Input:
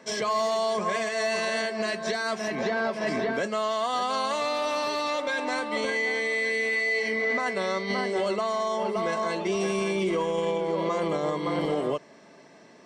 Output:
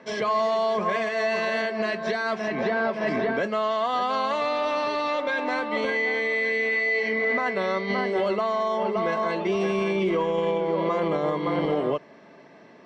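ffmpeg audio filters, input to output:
-af "lowpass=3.2k,volume=2.5dB"

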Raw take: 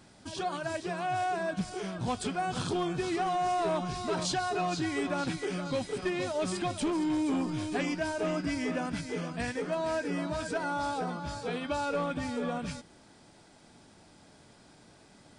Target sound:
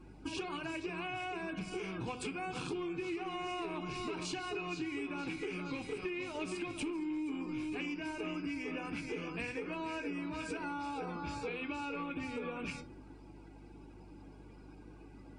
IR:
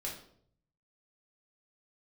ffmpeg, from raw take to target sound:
-filter_complex "[0:a]alimiter=level_in=1.5dB:limit=-24dB:level=0:latency=1:release=399,volume=-1.5dB,equalizer=f=1.1k:t=o:w=0.67:g=3.5,bandreject=f=50:t=h:w=6,bandreject=f=100:t=h:w=6,bandreject=f=150:t=h:w=6,bandreject=f=200:t=h:w=6,bandreject=f=250:t=h:w=6,bandreject=f=300:t=h:w=6,asplit=2[a][b];[1:a]atrim=start_sample=2205,adelay=27[c];[b][c]afir=irnorm=-1:irlink=0,volume=-12.5dB[d];[a][d]amix=inputs=2:normalize=0,aeval=exprs='val(0)+0.00178*(sin(2*PI*50*n/s)+sin(2*PI*2*50*n/s)/2+sin(2*PI*3*50*n/s)/3+sin(2*PI*4*50*n/s)/4+sin(2*PI*5*50*n/s)/5)':c=same,afftdn=nr=16:nf=-56,superequalizer=6b=2.51:7b=1.58:8b=0.501:12b=3.98,acompressor=threshold=-37dB:ratio=6"

